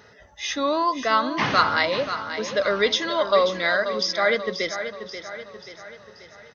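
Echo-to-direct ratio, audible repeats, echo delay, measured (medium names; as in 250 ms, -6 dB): -9.0 dB, 5, 534 ms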